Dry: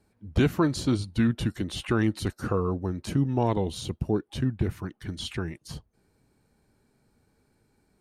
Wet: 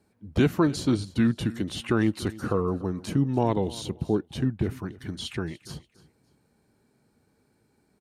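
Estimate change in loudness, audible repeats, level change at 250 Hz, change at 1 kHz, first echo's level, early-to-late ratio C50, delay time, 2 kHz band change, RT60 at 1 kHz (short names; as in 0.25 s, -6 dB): +1.0 dB, 2, +1.5 dB, +0.5 dB, -19.5 dB, none, 0.29 s, 0.0 dB, none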